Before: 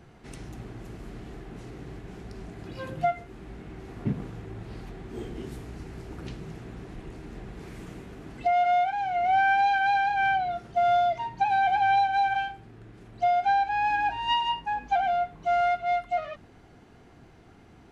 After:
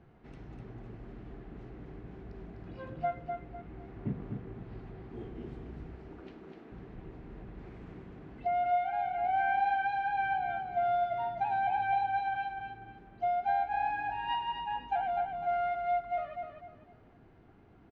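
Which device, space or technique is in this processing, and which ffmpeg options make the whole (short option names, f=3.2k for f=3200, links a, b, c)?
phone in a pocket: -filter_complex "[0:a]lowpass=3.7k,highshelf=f=2.4k:g=-9,asettb=1/sr,asplit=3[a][b][c];[a]atrim=end=5.954[d];[b]atrim=start=5.95:end=6.72,asetpts=PTS-STARTPTS,afade=t=in:d=0.004:c=qsin,afade=t=out:st=0.766:d=0.004:c=qsin,highpass=f=220:w=0.5412,highpass=f=220:w=1.3066[e];[c]atrim=start=6.716[f];[d][e]acrossfade=d=0.004:c1=hsin:c2=qsin[g];[g][f]acrossfade=d=0.004:c1=qsin:c2=hsin,aecho=1:1:251|502|753|1004:0.531|0.165|0.051|0.0158,volume=-6.5dB"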